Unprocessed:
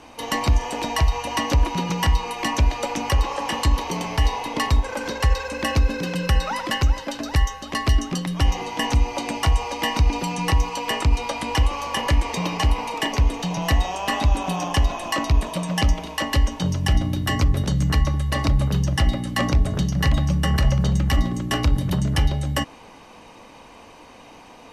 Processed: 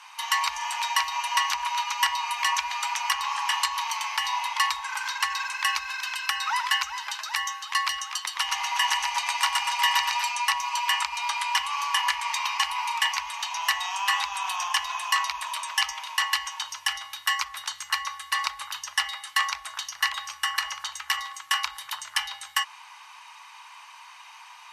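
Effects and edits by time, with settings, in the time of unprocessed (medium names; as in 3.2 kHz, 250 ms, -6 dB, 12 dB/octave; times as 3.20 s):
8.15–10.31 s: feedback delay 120 ms, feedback 51%, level -3 dB
whole clip: elliptic high-pass 940 Hz, stop band 50 dB; trim +2.5 dB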